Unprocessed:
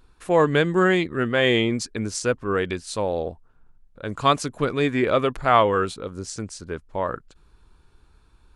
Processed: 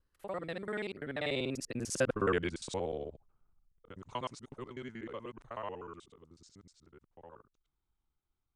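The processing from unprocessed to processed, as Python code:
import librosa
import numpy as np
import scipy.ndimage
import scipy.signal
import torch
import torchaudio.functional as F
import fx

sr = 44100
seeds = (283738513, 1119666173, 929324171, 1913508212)

y = fx.local_reverse(x, sr, ms=55.0)
y = fx.doppler_pass(y, sr, speed_mps=42, closest_m=16.0, pass_at_s=2.22)
y = y * 10.0 ** (-6.0 / 20.0)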